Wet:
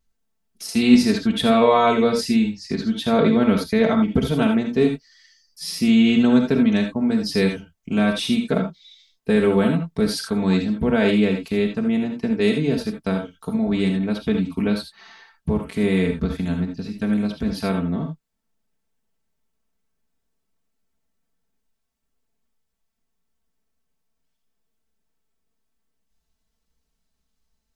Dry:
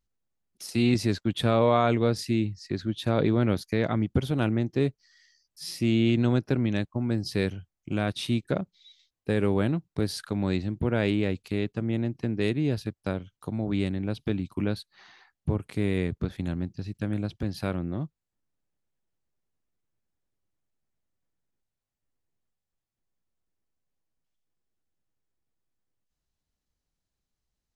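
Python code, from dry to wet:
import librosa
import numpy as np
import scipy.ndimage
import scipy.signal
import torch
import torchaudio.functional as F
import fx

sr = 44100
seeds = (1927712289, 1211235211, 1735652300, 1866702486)

y = x + 0.86 * np.pad(x, (int(4.5 * sr / 1000.0), 0))[:len(x)]
y = fx.rev_gated(y, sr, seeds[0], gate_ms=100, shape='rising', drr_db=4.0)
y = y * librosa.db_to_amplitude(4.0)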